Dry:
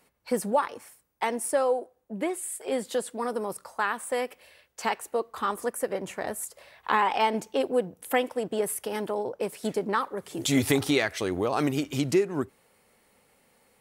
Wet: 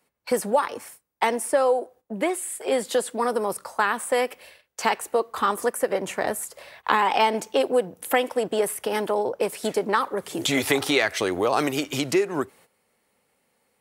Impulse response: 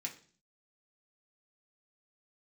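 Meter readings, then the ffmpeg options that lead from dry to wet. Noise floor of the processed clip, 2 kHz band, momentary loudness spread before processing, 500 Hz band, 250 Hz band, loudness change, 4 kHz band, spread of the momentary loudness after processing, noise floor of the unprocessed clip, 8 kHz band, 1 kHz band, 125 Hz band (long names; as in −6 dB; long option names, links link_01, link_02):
−71 dBFS, +5.5 dB, 9 LU, +4.5 dB, +0.5 dB, +4.0 dB, +6.0 dB, 7 LU, −65 dBFS, +3.5 dB, +4.5 dB, −3.0 dB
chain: -filter_complex "[0:a]agate=range=-13dB:threshold=-54dB:ratio=16:detection=peak,lowshelf=frequency=63:gain=-9,acrossover=split=400|3700[link_01][link_02][link_03];[link_01]acompressor=threshold=-39dB:ratio=4[link_04];[link_02]acompressor=threshold=-25dB:ratio=4[link_05];[link_03]acompressor=threshold=-38dB:ratio=4[link_06];[link_04][link_05][link_06]amix=inputs=3:normalize=0,volume=7.5dB"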